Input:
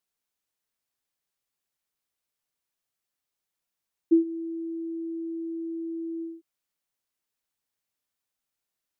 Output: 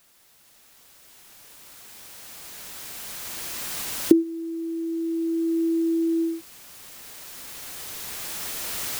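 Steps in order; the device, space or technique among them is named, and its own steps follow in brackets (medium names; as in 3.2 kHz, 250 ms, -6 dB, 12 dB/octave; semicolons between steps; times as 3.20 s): cheap recorder with automatic gain (white noise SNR 24 dB; recorder AGC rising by 7.5 dB/s)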